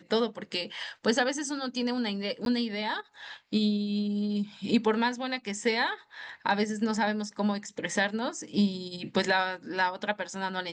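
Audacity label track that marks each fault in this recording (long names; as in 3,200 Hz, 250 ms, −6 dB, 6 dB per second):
2.450000	2.460000	drop-out 12 ms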